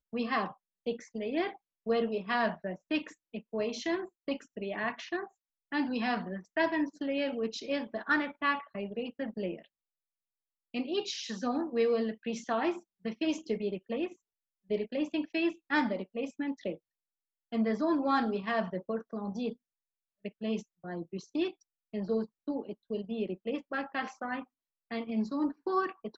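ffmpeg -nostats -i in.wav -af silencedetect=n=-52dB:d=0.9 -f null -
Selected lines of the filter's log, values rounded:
silence_start: 9.66
silence_end: 10.74 | silence_duration: 1.08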